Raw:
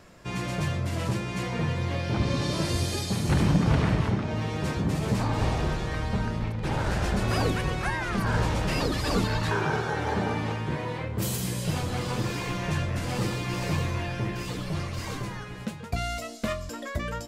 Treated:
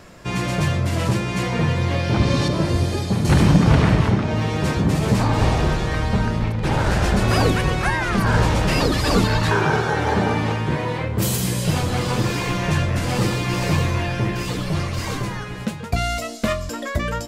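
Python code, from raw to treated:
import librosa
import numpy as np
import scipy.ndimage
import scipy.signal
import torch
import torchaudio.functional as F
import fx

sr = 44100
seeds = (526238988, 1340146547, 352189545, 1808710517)

y = fx.high_shelf(x, sr, hz=2600.0, db=-11.5, at=(2.48, 3.25))
y = y * librosa.db_to_amplitude(8.0)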